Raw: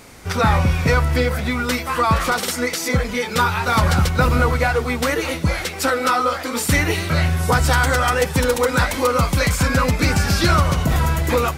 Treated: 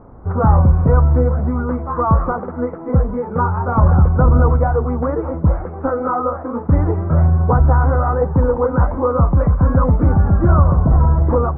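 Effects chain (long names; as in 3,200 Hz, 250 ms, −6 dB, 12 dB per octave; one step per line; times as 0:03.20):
Butterworth low-pass 1,200 Hz 36 dB per octave
low-shelf EQ 99 Hz +8.5 dB
level +1.5 dB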